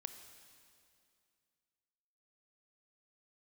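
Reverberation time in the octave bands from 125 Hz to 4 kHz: 2.6, 2.6, 2.5, 2.4, 2.3, 2.3 seconds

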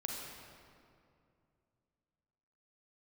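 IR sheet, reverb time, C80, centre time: 2.5 s, 1.5 dB, 107 ms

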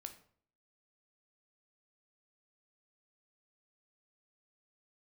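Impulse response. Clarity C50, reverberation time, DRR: 12.0 dB, 0.55 s, 6.5 dB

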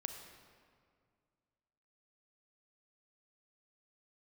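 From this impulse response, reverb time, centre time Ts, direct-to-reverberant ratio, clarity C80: 2.1 s, 38 ms, 5.5 dB, 7.0 dB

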